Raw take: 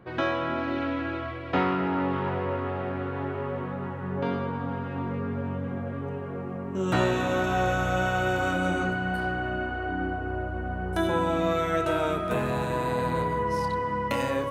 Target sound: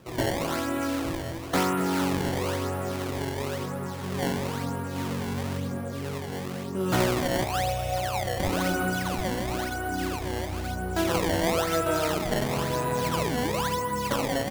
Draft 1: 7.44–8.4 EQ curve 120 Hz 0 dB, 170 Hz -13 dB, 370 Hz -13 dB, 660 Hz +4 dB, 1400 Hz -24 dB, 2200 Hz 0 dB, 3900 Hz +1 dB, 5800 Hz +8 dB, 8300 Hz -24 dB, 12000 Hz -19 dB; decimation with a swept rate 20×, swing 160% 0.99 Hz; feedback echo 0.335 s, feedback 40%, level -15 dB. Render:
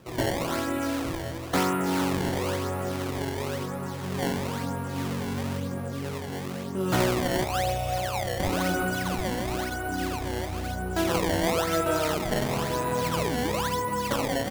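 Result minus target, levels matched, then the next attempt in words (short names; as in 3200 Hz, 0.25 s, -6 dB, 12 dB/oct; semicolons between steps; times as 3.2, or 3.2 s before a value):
echo 97 ms late
7.44–8.4 EQ curve 120 Hz 0 dB, 170 Hz -13 dB, 370 Hz -13 dB, 660 Hz +4 dB, 1400 Hz -24 dB, 2200 Hz 0 dB, 3900 Hz +1 dB, 5800 Hz +8 dB, 8300 Hz -24 dB, 12000 Hz -19 dB; decimation with a swept rate 20×, swing 160% 0.99 Hz; feedback echo 0.238 s, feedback 40%, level -15 dB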